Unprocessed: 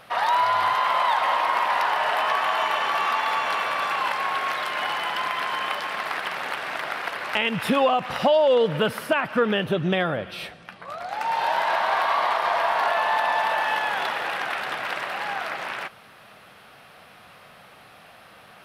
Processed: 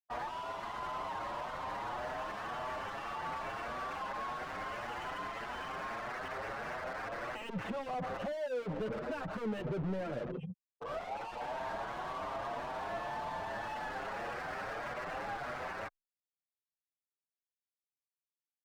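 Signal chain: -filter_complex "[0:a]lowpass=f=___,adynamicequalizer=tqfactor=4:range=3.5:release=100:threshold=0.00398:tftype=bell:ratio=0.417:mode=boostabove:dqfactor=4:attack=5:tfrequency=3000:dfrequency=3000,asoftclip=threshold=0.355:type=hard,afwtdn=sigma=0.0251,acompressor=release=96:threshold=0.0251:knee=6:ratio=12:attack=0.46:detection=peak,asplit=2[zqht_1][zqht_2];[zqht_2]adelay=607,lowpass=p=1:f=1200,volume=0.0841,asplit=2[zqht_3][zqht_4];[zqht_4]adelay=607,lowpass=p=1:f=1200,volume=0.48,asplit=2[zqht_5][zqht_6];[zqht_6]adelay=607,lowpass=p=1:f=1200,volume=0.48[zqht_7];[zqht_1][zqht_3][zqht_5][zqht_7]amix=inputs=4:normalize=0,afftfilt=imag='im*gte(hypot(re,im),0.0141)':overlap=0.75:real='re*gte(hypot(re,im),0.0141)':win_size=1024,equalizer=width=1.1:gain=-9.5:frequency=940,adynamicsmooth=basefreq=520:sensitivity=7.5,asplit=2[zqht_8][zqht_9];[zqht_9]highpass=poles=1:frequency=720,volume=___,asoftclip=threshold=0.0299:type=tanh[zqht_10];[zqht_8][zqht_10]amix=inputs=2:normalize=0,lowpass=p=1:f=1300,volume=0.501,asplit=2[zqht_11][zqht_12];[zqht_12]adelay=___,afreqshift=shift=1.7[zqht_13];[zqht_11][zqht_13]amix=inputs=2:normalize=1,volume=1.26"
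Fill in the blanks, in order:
4900, 56.2, 7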